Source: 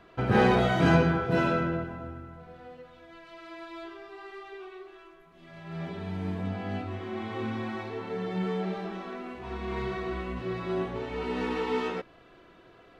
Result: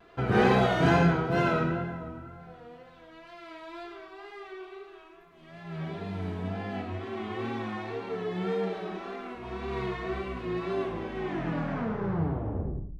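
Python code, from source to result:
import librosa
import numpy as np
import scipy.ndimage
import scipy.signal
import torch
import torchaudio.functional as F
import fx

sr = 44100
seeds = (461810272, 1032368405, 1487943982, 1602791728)

y = fx.tape_stop_end(x, sr, length_s=2.19)
y = fx.wow_flutter(y, sr, seeds[0], rate_hz=2.1, depth_cents=68.0)
y = fx.hum_notches(y, sr, base_hz=50, count=2)
y = fx.echo_feedback(y, sr, ms=111, feedback_pct=16, wet_db=-13.0)
y = fx.rev_gated(y, sr, seeds[1], gate_ms=140, shape='flat', drr_db=4.0)
y = F.gain(torch.from_numpy(y), -1.5).numpy()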